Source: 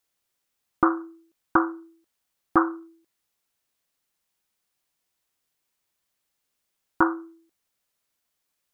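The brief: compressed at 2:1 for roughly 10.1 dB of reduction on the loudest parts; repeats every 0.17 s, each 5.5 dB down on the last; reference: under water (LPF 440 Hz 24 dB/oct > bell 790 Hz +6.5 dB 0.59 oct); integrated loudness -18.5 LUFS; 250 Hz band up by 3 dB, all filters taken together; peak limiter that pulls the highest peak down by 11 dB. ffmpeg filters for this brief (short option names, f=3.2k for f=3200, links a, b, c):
-af "equalizer=f=250:t=o:g=5,acompressor=threshold=-32dB:ratio=2,alimiter=limit=-23dB:level=0:latency=1,lowpass=f=440:w=0.5412,lowpass=f=440:w=1.3066,equalizer=f=790:t=o:w=0.59:g=6.5,aecho=1:1:170|340|510|680|850|1020|1190:0.531|0.281|0.149|0.079|0.0419|0.0222|0.0118,volume=20.5dB"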